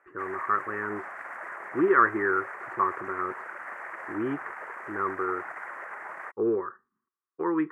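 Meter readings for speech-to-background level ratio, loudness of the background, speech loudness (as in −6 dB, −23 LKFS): 10.5 dB, −39.0 LKFS, −28.5 LKFS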